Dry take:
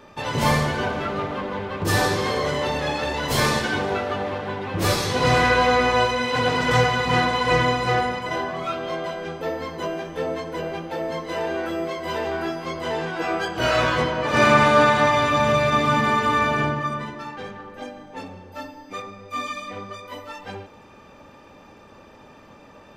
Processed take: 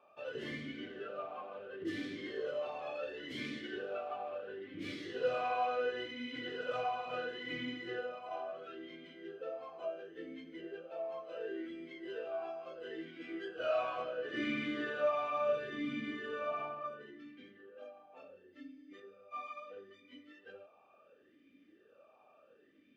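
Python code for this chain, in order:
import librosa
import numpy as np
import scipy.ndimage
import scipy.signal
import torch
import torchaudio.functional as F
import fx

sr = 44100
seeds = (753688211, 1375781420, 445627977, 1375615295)

y = fx.vowel_sweep(x, sr, vowels='a-i', hz=0.72)
y = F.gain(torch.from_numpy(y), -6.5).numpy()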